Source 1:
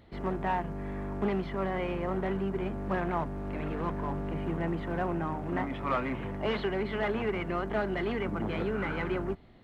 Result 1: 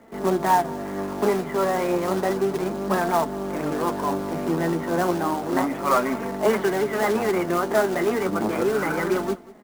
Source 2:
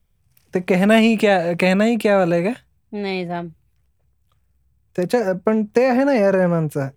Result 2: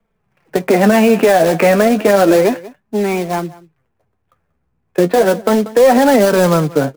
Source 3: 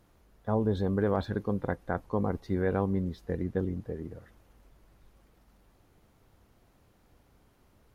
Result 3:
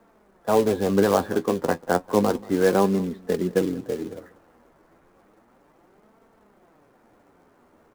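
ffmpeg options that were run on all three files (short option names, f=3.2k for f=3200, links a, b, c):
-filter_complex "[0:a]lowpass=4.4k,acrossover=split=200 2100:gain=0.112 1 0.0891[a][b][c];[a][b][c]amix=inputs=3:normalize=0,acrossover=split=300[d][e];[e]acrusher=bits=3:mode=log:mix=0:aa=0.000001[f];[d][f]amix=inputs=2:normalize=0,flanger=delay=4.4:depth=8.1:regen=38:speed=0.32:shape=sinusoidal,asplit=2[g][h];[h]aecho=0:1:187:0.0891[i];[g][i]amix=inputs=2:normalize=0,alimiter=level_in=15.5dB:limit=-1dB:release=50:level=0:latency=1,volume=-1dB"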